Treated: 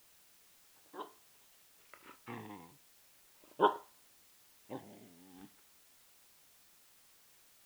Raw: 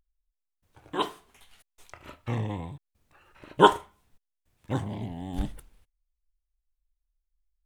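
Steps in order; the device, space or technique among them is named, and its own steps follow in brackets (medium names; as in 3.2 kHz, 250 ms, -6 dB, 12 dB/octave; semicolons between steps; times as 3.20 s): shortwave radio (band-pass 300–2800 Hz; tremolo 0.48 Hz, depth 69%; LFO notch sine 0.31 Hz 560–2500 Hz; white noise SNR 20 dB); trim -6.5 dB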